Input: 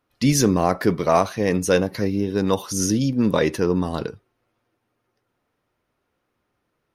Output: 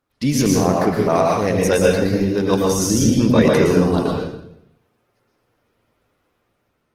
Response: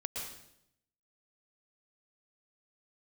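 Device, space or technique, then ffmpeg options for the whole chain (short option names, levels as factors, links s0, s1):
speakerphone in a meeting room: -filter_complex "[1:a]atrim=start_sample=2205[s0];[0:a][s0]afir=irnorm=-1:irlink=0,dynaudnorm=f=670:g=5:m=2.66,volume=1.19" -ar 48000 -c:a libopus -b:a 16k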